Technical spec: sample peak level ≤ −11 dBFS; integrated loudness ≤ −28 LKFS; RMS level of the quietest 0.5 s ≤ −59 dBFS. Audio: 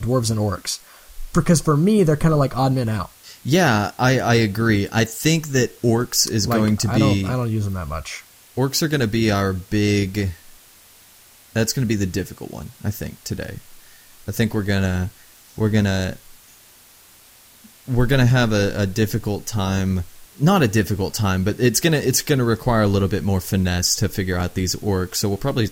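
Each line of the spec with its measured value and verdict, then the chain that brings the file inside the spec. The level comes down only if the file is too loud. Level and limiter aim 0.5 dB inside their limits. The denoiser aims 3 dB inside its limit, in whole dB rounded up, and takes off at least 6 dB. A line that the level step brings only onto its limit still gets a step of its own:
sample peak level −4.0 dBFS: out of spec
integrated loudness −20.0 LKFS: out of spec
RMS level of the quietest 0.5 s −49 dBFS: out of spec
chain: broadband denoise 6 dB, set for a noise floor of −49 dBFS
level −8.5 dB

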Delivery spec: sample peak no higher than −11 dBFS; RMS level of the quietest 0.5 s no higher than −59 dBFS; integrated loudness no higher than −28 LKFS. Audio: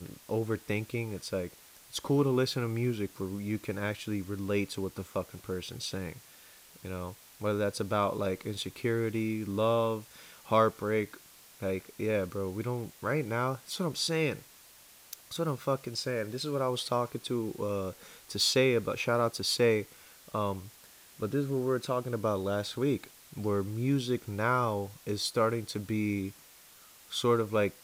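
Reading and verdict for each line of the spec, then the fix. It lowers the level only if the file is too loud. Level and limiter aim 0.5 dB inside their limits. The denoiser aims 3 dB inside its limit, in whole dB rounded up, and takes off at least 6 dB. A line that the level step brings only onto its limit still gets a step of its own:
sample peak −12.5 dBFS: in spec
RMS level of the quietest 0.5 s −56 dBFS: out of spec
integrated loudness −32.0 LKFS: in spec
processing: broadband denoise 6 dB, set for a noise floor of −56 dBFS

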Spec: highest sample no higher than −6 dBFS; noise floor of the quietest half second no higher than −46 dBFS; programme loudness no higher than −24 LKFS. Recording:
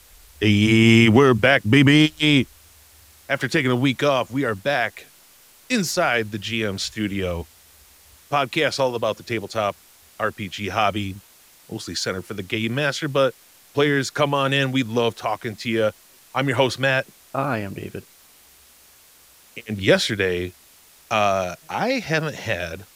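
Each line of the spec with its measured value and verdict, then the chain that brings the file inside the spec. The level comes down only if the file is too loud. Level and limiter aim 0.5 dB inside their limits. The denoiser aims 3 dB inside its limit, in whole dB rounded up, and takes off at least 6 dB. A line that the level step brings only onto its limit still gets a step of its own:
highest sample −4.0 dBFS: out of spec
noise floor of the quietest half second −52 dBFS: in spec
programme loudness −21.0 LKFS: out of spec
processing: level −3.5 dB

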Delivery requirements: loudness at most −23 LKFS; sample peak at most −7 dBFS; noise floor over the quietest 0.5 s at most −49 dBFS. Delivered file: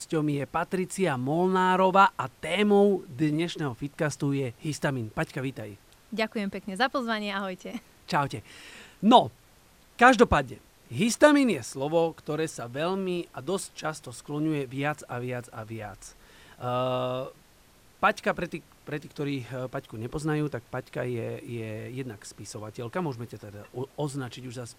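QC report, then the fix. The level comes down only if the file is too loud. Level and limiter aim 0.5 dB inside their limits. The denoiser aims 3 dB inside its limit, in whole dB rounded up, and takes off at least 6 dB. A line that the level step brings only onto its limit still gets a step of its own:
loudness −27.5 LKFS: in spec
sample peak −4.0 dBFS: out of spec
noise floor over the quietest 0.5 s −58 dBFS: in spec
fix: brickwall limiter −7.5 dBFS

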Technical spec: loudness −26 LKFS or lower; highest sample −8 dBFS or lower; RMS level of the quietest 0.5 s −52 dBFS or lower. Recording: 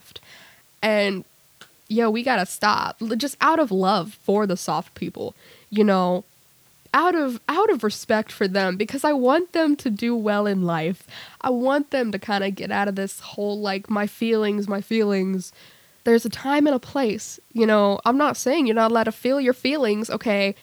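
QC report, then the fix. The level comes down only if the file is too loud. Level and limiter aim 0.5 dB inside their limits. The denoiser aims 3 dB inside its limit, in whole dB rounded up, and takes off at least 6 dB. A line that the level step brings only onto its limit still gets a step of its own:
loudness −22.0 LKFS: out of spec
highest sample −5.5 dBFS: out of spec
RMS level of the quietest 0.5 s −56 dBFS: in spec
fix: level −4.5 dB

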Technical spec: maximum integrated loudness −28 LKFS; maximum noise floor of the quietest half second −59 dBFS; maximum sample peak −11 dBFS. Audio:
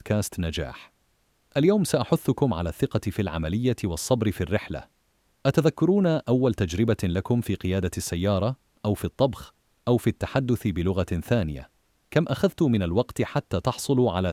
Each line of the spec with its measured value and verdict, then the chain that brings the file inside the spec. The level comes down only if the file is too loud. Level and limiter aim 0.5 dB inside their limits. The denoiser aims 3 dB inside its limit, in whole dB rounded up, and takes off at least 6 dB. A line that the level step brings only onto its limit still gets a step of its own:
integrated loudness −25.5 LKFS: out of spec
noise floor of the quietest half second −68 dBFS: in spec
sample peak −6.5 dBFS: out of spec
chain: level −3 dB
brickwall limiter −11.5 dBFS

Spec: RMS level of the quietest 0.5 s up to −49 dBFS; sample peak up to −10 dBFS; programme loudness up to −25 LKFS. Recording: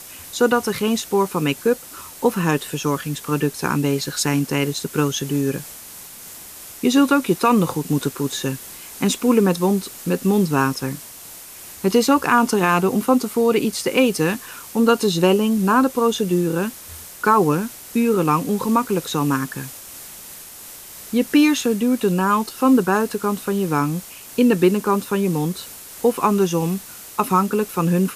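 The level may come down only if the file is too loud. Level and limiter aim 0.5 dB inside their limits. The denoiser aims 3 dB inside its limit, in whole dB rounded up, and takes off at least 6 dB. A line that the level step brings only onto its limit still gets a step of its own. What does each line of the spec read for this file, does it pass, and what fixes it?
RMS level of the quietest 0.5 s −39 dBFS: out of spec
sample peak −4.5 dBFS: out of spec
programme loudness −19.5 LKFS: out of spec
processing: broadband denoise 7 dB, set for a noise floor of −39 dBFS
level −6 dB

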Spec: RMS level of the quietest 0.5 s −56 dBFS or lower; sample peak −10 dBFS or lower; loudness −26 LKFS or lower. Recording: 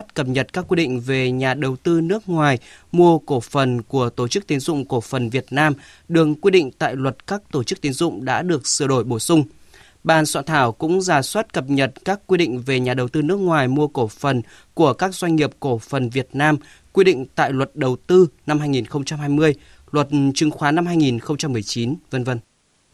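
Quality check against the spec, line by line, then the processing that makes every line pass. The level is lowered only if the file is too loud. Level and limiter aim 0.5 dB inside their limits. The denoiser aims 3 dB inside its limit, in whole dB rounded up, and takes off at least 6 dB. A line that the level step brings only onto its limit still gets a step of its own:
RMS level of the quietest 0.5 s −61 dBFS: in spec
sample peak −3.0 dBFS: out of spec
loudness −19.5 LKFS: out of spec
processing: level −7 dB
brickwall limiter −10.5 dBFS

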